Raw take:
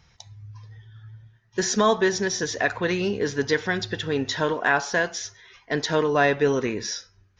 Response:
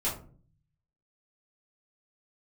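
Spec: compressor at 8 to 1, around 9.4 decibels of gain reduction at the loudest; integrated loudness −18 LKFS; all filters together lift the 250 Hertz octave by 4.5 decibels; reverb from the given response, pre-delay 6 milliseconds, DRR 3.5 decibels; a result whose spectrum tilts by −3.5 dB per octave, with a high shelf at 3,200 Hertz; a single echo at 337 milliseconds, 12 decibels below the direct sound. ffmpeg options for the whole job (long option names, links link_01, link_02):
-filter_complex "[0:a]equalizer=frequency=250:width_type=o:gain=6,highshelf=frequency=3200:gain=8,acompressor=threshold=-23dB:ratio=8,aecho=1:1:337:0.251,asplit=2[link_01][link_02];[1:a]atrim=start_sample=2205,adelay=6[link_03];[link_02][link_03]afir=irnorm=-1:irlink=0,volume=-10.5dB[link_04];[link_01][link_04]amix=inputs=2:normalize=0,volume=7.5dB"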